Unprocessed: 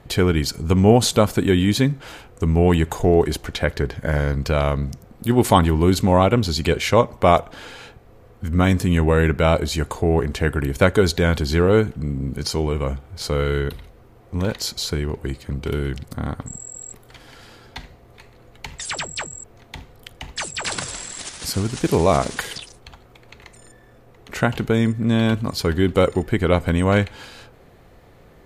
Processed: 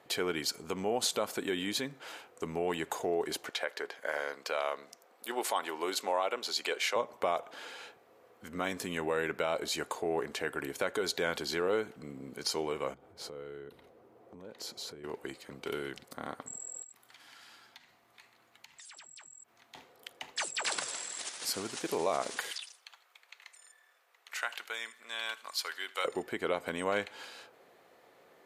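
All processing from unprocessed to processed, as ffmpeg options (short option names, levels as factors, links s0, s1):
-filter_complex "[0:a]asettb=1/sr,asplit=3[s0][s1][s2];[s0]atrim=end=3.494[s3];[s1]atrim=start=3.49:end=6.96,asetpts=PTS-STARTPTS,afade=t=in:d=0.004:c=qsin,afade=t=out:st=3.466:d=0.004:c=qsin,highpass=490,highshelf=f=11000:g=-3.5[s4];[s2]atrim=start=6.956[s5];[s3][s4]acrossfade=d=0.004:c1=hsin:c2=qsin[s6];[s6][s5]acrossfade=d=0.004:c1=qsin:c2=hsin,asettb=1/sr,asplit=3[s7][s8][s9];[s7]atrim=end=12.944[s10];[s8]atrim=start=12.94:end=15.04,asetpts=PTS-STARTPTS,afade=t=in:d=0.004:c=qsin,afade=t=out:st=2.096:d=0.004:c=qsin,tiltshelf=f=850:g=7.5,acompressor=threshold=0.0355:ratio=5:attack=3.2:release=140:knee=1:detection=peak[s11];[s9]atrim=start=15.036[s12];[s10][s11]acrossfade=d=0.004:c1=hsin:c2=qsin[s13];[s13][s12]acrossfade=d=0.004:c1=qsin:c2=hsin,asettb=1/sr,asplit=3[s14][s15][s16];[s14]atrim=end=16.824[s17];[s15]atrim=start=16.82:end=19.75,asetpts=PTS-STARTPTS,afade=t=in:d=0.004:c=qsin,afade=t=out:st=2.926:d=0.004:c=qsin,equalizer=f=470:t=o:w=0.98:g=-14.5,acompressor=threshold=0.00891:ratio=12:attack=3.2:release=140:knee=1:detection=peak[s18];[s16]atrim=start=19.746[s19];[s17][s18]acrossfade=d=0.004:c1=hsin:c2=qsin[s20];[s20][s19]acrossfade=d=0.004:c1=qsin:c2=hsin,asettb=1/sr,asplit=3[s21][s22][s23];[s21]atrim=end=22.514[s24];[s22]atrim=start=22.51:end=26.05,asetpts=PTS-STARTPTS,afade=t=in:d=0.004:c=qsin,afade=t=out:st=3.536:d=0.004:c=qsin,highpass=1300,aecho=1:1:79|158|237:0.0891|0.0374|0.0157,atrim=end_sample=156114[s25];[s23]atrim=start=26.046[s26];[s24][s25]acrossfade=d=0.004:c1=hsin:c2=qsin[s27];[s27][s26]acrossfade=d=0.004:c1=qsin:c2=hsin,alimiter=limit=0.266:level=0:latency=1:release=127,highpass=420,volume=0.447"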